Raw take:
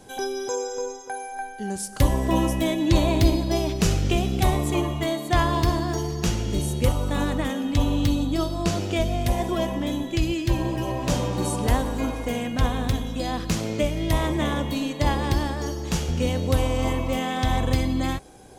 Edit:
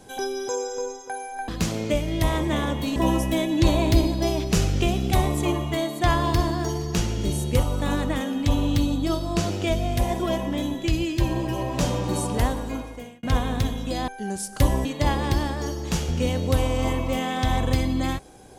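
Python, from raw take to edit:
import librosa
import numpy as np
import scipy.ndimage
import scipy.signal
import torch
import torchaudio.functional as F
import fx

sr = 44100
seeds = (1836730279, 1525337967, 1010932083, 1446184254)

y = fx.edit(x, sr, fx.swap(start_s=1.48, length_s=0.77, other_s=13.37, other_length_s=1.48),
    fx.fade_out_span(start_s=11.34, length_s=1.18, curve='qsin'), tone=tone)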